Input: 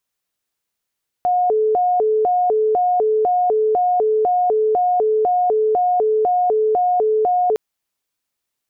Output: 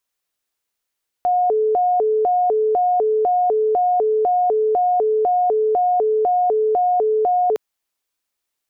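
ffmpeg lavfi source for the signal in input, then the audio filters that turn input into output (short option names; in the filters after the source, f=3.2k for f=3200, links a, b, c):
-f lavfi -i "aevalsrc='0.211*sin(2*PI*(577*t+144/2*(0.5-abs(mod(2*t,1)-0.5))))':d=6.31:s=44100"
-af "equalizer=f=140:w=0.98:g=-7.5"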